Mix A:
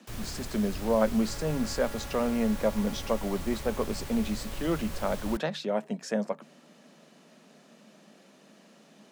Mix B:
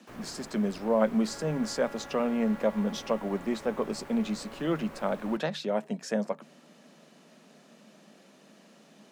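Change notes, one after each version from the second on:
first sound: add three-band isolator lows -19 dB, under 180 Hz, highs -16 dB, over 2200 Hz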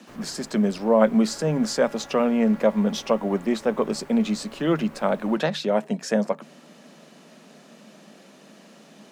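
speech +7.0 dB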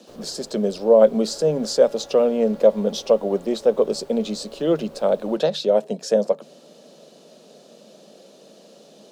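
master: add graphic EQ 125/250/500/1000/2000/4000 Hz -3/-5/+10/-5/-11/+6 dB

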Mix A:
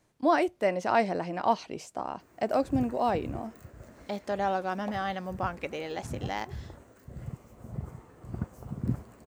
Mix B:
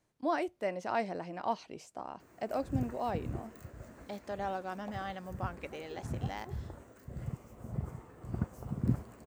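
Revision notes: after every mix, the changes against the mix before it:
speech -8.0 dB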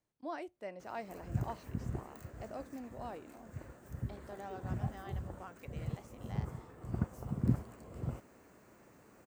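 speech -10.0 dB; background: entry -1.40 s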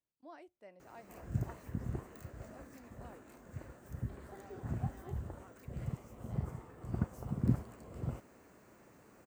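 speech -11.5 dB

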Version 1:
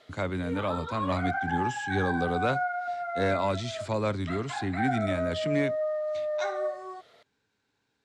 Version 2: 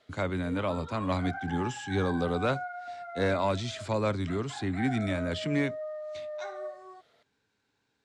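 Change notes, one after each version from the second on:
background -8.0 dB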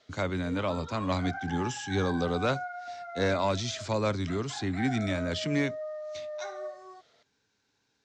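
master: add synth low-pass 6100 Hz, resonance Q 2.7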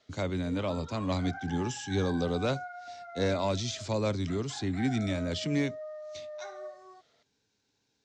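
speech: add bell 1400 Hz -7 dB 1.4 oct; background -4.0 dB

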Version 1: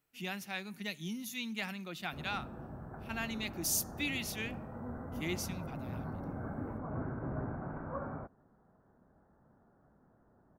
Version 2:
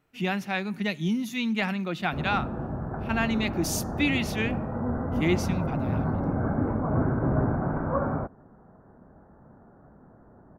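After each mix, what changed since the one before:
master: remove pre-emphasis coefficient 0.8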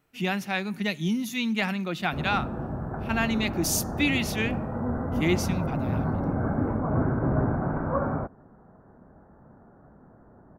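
master: add high shelf 4900 Hz +6.5 dB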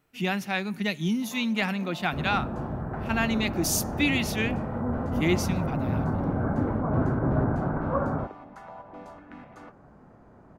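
first sound: unmuted

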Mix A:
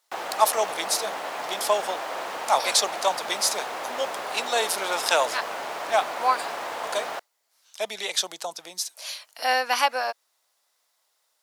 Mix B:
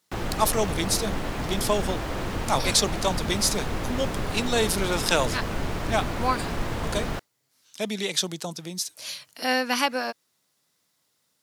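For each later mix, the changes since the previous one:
master: remove resonant high-pass 700 Hz, resonance Q 1.7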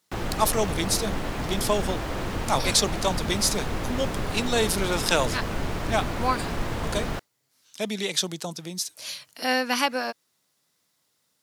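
none

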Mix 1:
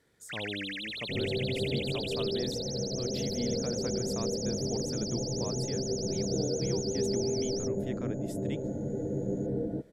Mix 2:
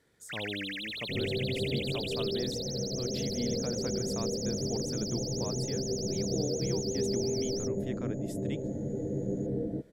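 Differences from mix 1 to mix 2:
first sound: remove LPF 11000 Hz 24 dB/oct; second sound: remove synth low-pass 1300 Hz, resonance Q 14

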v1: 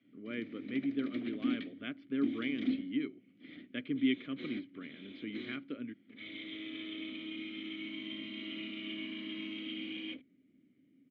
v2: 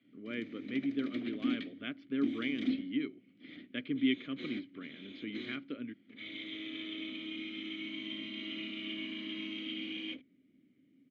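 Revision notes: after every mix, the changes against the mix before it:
master: remove air absorption 130 m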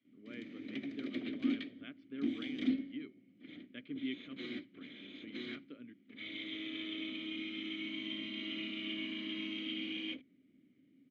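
speech -10.0 dB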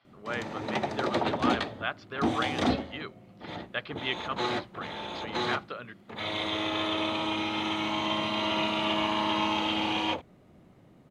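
speech: add tilt shelf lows -7.5 dB, about 1100 Hz; master: remove vowel filter i

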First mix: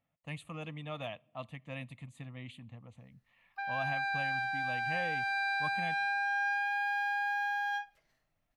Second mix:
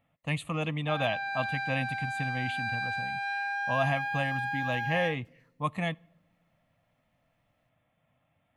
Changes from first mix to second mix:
speech +11.0 dB; background: entry -2.70 s

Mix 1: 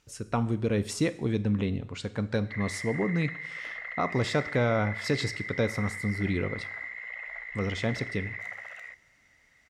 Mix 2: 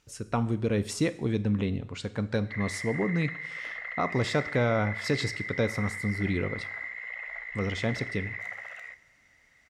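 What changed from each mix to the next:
background: send +10.0 dB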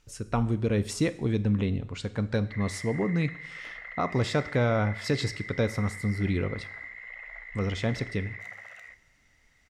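background -4.5 dB; master: remove HPF 100 Hz 6 dB/oct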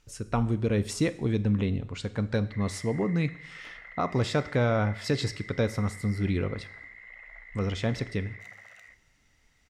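background -5.0 dB

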